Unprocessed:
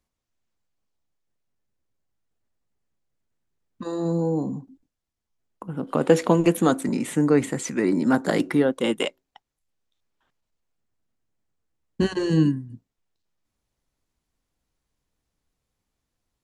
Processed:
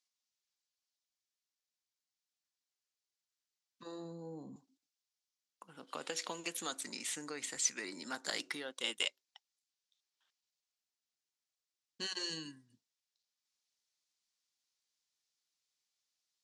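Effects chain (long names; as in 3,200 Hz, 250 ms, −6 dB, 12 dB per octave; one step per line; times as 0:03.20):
0:03.82–0:04.56: spectral tilt −4.5 dB per octave
downward compressor, threshold −18 dBFS, peak gain reduction 8 dB
resonant band-pass 5,100 Hz, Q 1.5
level +3 dB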